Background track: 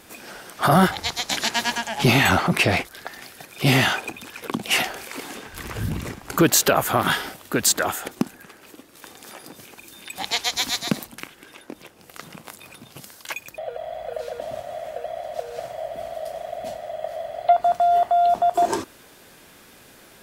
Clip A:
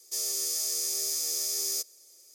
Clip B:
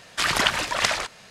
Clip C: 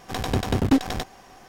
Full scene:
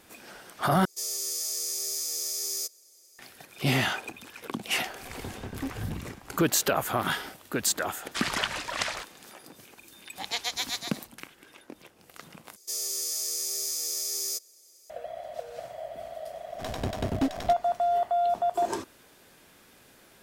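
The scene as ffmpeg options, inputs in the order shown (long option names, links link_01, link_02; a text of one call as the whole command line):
ffmpeg -i bed.wav -i cue0.wav -i cue1.wav -i cue2.wav -filter_complex "[1:a]asplit=2[link_01][link_02];[3:a]asplit=2[link_03][link_04];[0:a]volume=-7.5dB[link_05];[link_03]lowpass=frequency=2300:poles=1[link_06];[link_05]asplit=3[link_07][link_08][link_09];[link_07]atrim=end=0.854[link_10];[link_01]atrim=end=2.34,asetpts=PTS-STARTPTS,volume=-1.5dB[link_11];[link_08]atrim=start=3.186:end=12.564[link_12];[link_02]atrim=end=2.34,asetpts=PTS-STARTPTS,volume=-1dB[link_13];[link_09]atrim=start=14.896[link_14];[link_06]atrim=end=1.48,asetpts=PTS-STARTPTS,volume=-16dB,afade=type=in:duration=0.004:curve=hsin,afade=type=out:start_time=1.476:duration=0.004:curve=hsin,adelay=4910[link_15];[2:a]atrim=end=1.3,asetpts=PTS-STARTPTS,volume=-8dB,afade=type=in:duration=0.004:curve=hsin,afade=type=out:start_time=1.296:duration=0.004:curve=hsin,adelay=7970[link_16];[link_04]atrim=end=1.48,asetpts=PTS-STARTPTS,volume=-8dB,afade=type=in:duration=0.004:curve=hsin,afade=type=out:start_time=1.476:duration=0.004:curve=hsin,adelay=16500[link_17];[link_10][link_11]acrossfade=duration=0.004:curve1=hsin:curve2=hsin[link_18];[link_18][link_12]acrossfade=duration=0.004:curve1=hsin:curve2=hsin[link_19];[link_19][link_13]acrossfade=duration=0.004:curve1=hsin:curve2=hsin[link_20];[link_20][link_14]acrossfade=duration=0.004:curve1=hsin:curve2=hsin[link_21];[link_21][link_15][link_16][link_17]amix=inputs=4:normalize=0" out.wav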